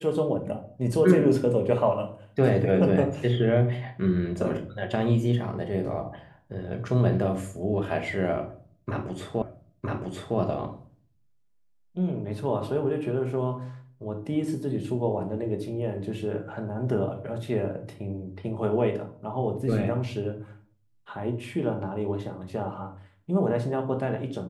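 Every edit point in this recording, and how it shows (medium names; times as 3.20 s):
9.42 s: repeat of the last 0.96 s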